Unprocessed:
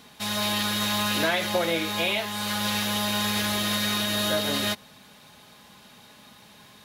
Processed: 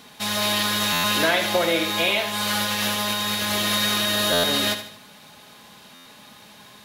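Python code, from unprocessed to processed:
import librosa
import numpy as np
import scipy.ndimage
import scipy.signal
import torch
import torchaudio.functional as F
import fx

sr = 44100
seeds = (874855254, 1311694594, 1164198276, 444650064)

y = fx.low_shelf(x, sr, hz=130.0, db=-6.0)
y = fx.over_compress(y, sr, threshold_db=-28.0, ratio=-0.5, at=(2.33, 3.52))
y = fx.echo_feedback(y, sr, ms=75, feedback_pct=42, wet_db=-10)
y = fx.buffer_glitch(y, sr, at_s=(0.92, 4.32, 5.94), block=512, repeats=9)
y = y * 10.0 ** (4.0 / 20.0)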